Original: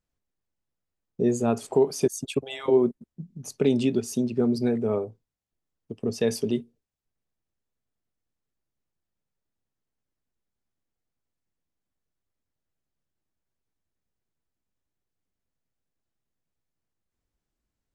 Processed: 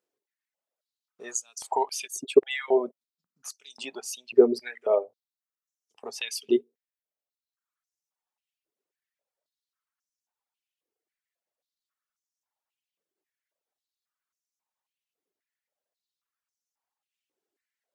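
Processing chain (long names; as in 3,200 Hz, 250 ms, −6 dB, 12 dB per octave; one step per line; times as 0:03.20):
reverb reduction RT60 1.2 s
high-pass on a step sequencer 3.7 Hz 400–5,900 Hz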